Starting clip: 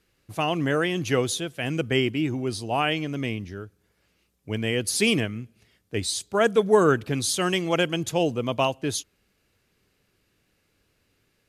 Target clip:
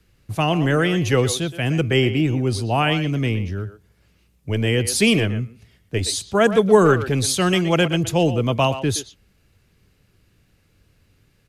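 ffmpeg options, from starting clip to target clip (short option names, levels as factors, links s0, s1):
-filter_complex "[0:a]acrossover=split=170|450|1900[s0][s1][s2][s3];[s0]aeval=exprs='0.0562*sin(PI/2*2.24*val(0)/0.0562)':c=same[s4];[s4][s1][s2][s3]amix=inputs=4:normalize=0,asplit=2[s5][s6];[s6]adelay=120,highpass=300,lowpass=3400,asoftclip=type=hard:threshold=0.178,volume=0.282[s7];[s5][s7]amix=inputs=2:normalize=0,volume=1.58"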